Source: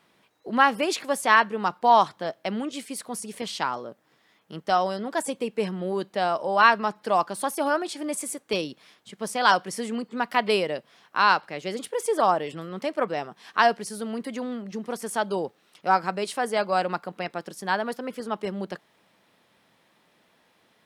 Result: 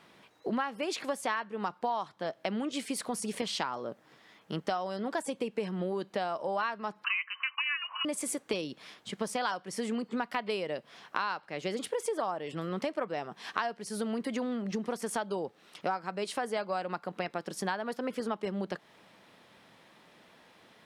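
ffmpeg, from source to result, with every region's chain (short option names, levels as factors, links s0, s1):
-filter_complex "[0:a]asettb=1/sr,asplit=3[s0][s1][s2];[s0]atrim=end=7.044[s3];[s1]atrim=start=7.04:end=8.05,asetpts=PTS-STARTPTS,afade=t=in:d=0.004:c=qsin,afade=t=out:st=1.006:d=0.004:c=qsin,lowpass=f=2700:t=q:w=0.5098,lowpass=f=2700:t=q:w=0.6013,lowpass=f=2700:t=q:w=0.9,lowpass=f=2700:t=q:w=2.563,afreqshift=-3200,highpass=f=1100:t=q:w=13[s4];[s2]atrim=start=8.046[s5];[s3][s4]acrossfade=d=0.004:c1=hsin:c2=qsin[s6];[s6][s5]acrossfade=d=0.004:c1=qsin:c2=hsin,highshelf=f=11000:g=-10,acompressor=threshold=0.0178:ratio=8,volume=1.78"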